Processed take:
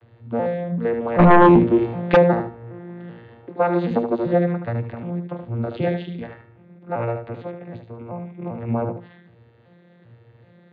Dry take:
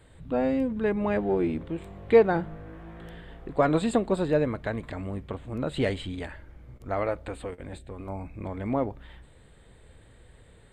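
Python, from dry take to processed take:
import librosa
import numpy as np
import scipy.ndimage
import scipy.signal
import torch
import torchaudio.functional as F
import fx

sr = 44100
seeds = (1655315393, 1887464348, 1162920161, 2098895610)

y = fx.vocoder_arp(x, sr, chord='bare fifth', root=46, every_ms=386)
y = scipy.signal.sosfilt(scipy.signal.butter(4, 4000.0, 'lowpass', fs=sr, output='sos'), y)
y = fx.peak_eq(y, sr, hz=160.0, db=-6.5, octaves=1.7)
y = fx.echo_feedback(y, sr, ms=75, feedback_pct=22, wet_db=-7.0)
y = fx.fold_sine(y, sr, drive_db=fx.line((1.18, 12.0), (2.15, 7.0)), ceiling_db=-15.5, at=(1.18, 2.15), fade=0.02)
y = fx.low_shelf(y, sr, hz=230.0, db=-10.5, at=(3.46, 3.91))
y = y * librosa.db_to_amplitude(8.5)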